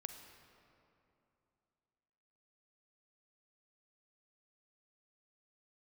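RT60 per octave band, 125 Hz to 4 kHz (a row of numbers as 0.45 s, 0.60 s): 3.0 s, 3.1 s, 2.9 s, 2.8 s, 2.2 s, 1.6 s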